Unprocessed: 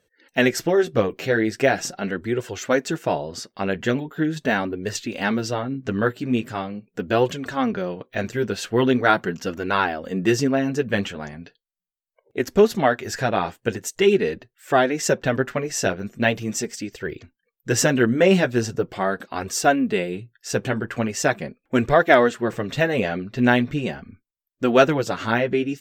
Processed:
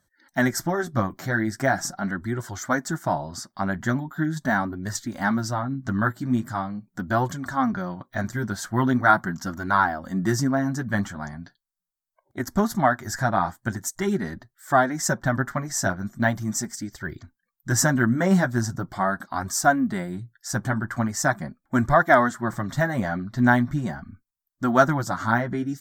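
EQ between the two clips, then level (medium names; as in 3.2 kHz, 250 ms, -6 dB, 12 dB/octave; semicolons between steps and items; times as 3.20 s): dynamic bell 3.9 kHz, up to -5 dB, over -42 dBFS, Q 1.5; static phaser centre 1.1 kHz, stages 4; +3.0 dB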